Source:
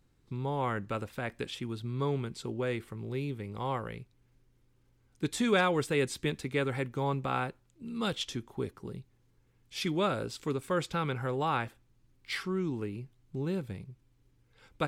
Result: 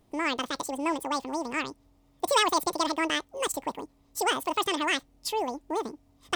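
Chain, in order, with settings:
wrong playback speed 33 rpm record played at 78 rpm
level +4 dB

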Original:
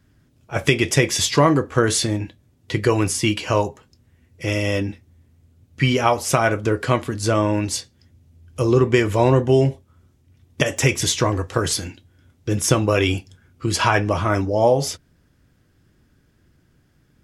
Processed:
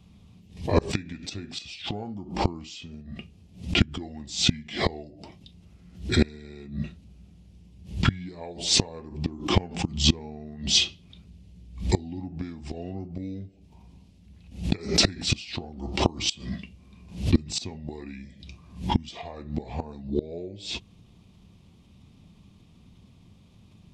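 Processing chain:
octave-band graphic EQ 125/250/500/1,000/2,000/4,000/8,000 Hz +5/+11/+4/+8/−10/+12/+4 dB
gate with flip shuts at −4 dBFS, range −27 dB
speed change −28%
background raised ahead of every attack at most 130 dB per second
level −2 dB

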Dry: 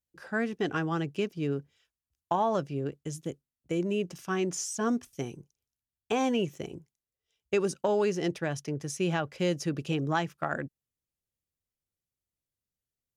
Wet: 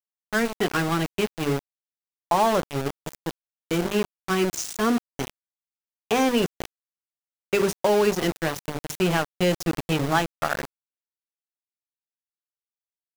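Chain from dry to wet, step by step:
mains-hum notches 50/100/150/200/250/300/350/400/450/500 Hz
centre clipping without the shift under −31 dBFS
level +7 dB

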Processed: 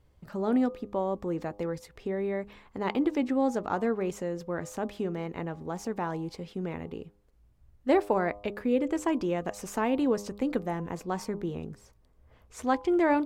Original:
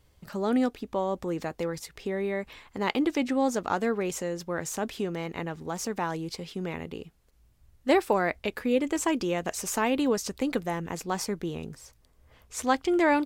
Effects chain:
high-shelf EQ 2,000 Hz −11.5 dB
hum removal 101.9 Hz, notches 12

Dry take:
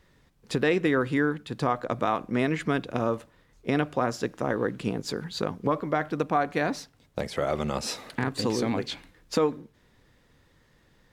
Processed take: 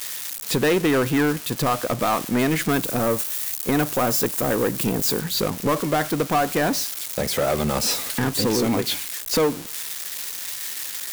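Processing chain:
spike at every zero crossing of −26.5 dBFS
0:02.71–0:05.20: high-shelf EQ 8,700 Hz +8 dB
leveller curve on the samples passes 3
level −3.5 dB

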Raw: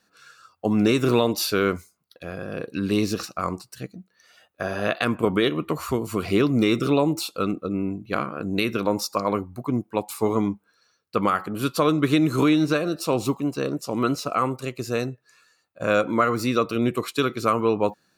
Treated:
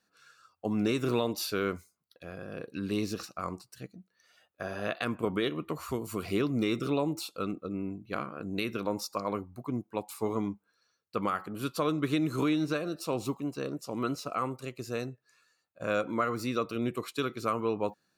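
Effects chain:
0:05.89–0:06.38: high-shelf EQ 5,600 Hz → 8,700 Hz +6.5 dB
level −9 dB

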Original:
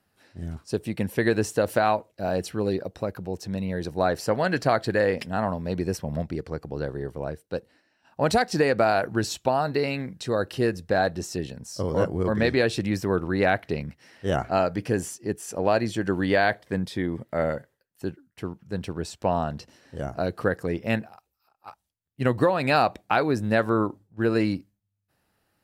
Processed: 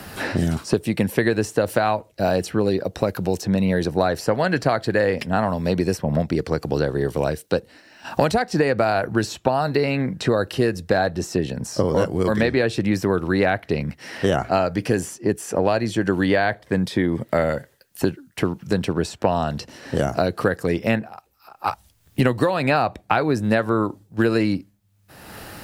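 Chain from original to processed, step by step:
multiband upward and downward compressor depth 100%
level +3.5 dB

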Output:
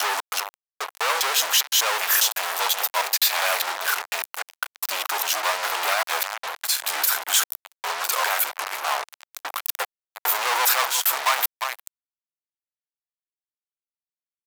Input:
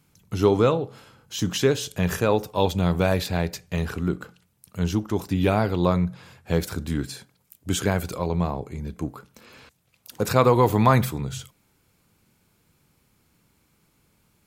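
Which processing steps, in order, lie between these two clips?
slices reordered back to front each 201 ms, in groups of 3
parametric band 14,000 Hz +13.5 dB 0.36 octaves
on a send: single-tap delay 350 ms −23 dB
on the sum: fuzz pedal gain 42 dB, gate −37 dBFS
high-pass filter 770 Hz 24 dB per octave
level −1.5 dB

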